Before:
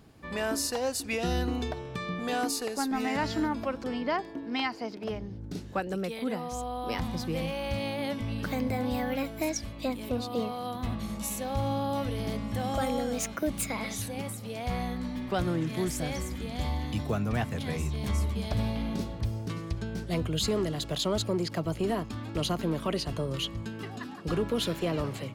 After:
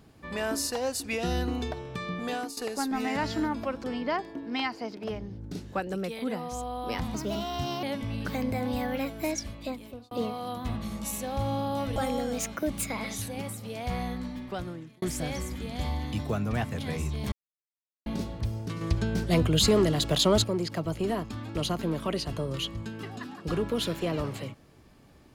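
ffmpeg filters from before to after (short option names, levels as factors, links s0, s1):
-filter_complex "[0:a]asplit=11[s0][s1][s2][s3][s4][s5][s6][s7][s8][s9][s10];[s0]atrim=end=2.57,asetpts=PTS-STARTPTS,afade=t=out:st=2.25:d=0.32:silence=0.199526[s11];[s1]atrim=start=2.57:end=7.144,asetpts=PTS-STARTPTS,afade=t=in:d=0.004:c=hsin:silence=0.199526[s12];[s2]atrim=start=7.14:end=8.01,asetpts=PTS-STARTPTS,asetrate=55566,aresample=44100[s13];[s3]atrim=start=8.006:end=10.29,asetpts=PTS-STARTPTS,afade=t=out:st=1.654:d=0.63[s14];[s4]atrim=start=10.29:end=12.142,asetpts=PTS-STARTPTS,afade=t=in:d=0.004:c=hsin[s15];[s5]atrim=start=12.758:end=15.82,asetpts=PTS-STARTPTS,afade=t=out:st=2.162:d=0.9[s16];[s6]atrim=start=15.82:end=18.12,asetpts=PTS-STARTPTS,afade=t=in:d=0.004:c=hsin,afade=t=out:st=2.296:d=0.004:c=hsin[s17];[s7]atrim=start=18.12:end=18.86,asetpts=PTS-STARTPTS,volume=0[s18];[s8]atrim=start=18.86:end=19.612,asetpts=PTS-STARTPTS,afade=t=in:d=0.004:c=hsin[s19];[s9]atrim=start=19.608:end=21.242,asetpts=PTS-STARTPTS,volume=2.11[s20];[s10]atrim=start=21.238[s21];[s11][s12]concat=n=2:v=0:a=1[s22];[s22][s13]acrossfade=d=0.004:c1=hsin:c2=hsin[s23];[s14][s15]concat=n=2:v=0:a=1[s24];[s23][s24]acrossfade=d=0.004:c1=hsin:c2=hsin[s25];[s16][s17][s18][s19]concat=n=4:v=0:a=1[s26];[s25][s26]acrossfade=d=0.004:c1=hsin:c2=hsin[s27];[s27][s20]acrossfade=d=0.004:c1=hsin:c2=hsin[s28];[s28][s21]acrossfade=d=0.004:c1=hsin:c2=hsin"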